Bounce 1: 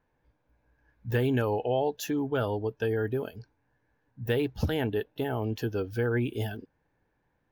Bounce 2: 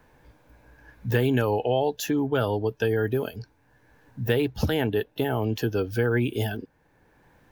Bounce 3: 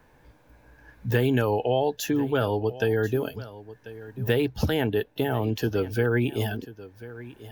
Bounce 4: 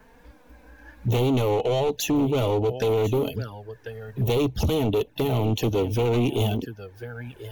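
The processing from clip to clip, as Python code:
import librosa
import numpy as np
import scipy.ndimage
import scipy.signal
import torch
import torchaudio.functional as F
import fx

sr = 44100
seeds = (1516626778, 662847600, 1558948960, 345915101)

y1 = fx.peak_eq(x, sr, hz=16000.0, db=4.0, octaves=2.2)
y1 = fx.band_squash(y1, sr, depth_pct=40)
y1 = F.gain(torch.from_numpy(y1), 4.0).numpy()
y2 = y1 + 10.0 ** (-17.0 / 20.0) * np.pad(y1, (int(1041 * sr / 1000.0), 0))[:len(y1)]
y3 = np.clip(10.0 ** (26.0 / 20.0) * y2, -1.0, 1.0) / 10.0 ** (26.0 / 20.0)
y3 = fx.env_flanger(y3, sr, rest_ms=4.9, full_db=-29.0)
y3 = F.gain(torch.from_numpy(y3), 7.5).numpy()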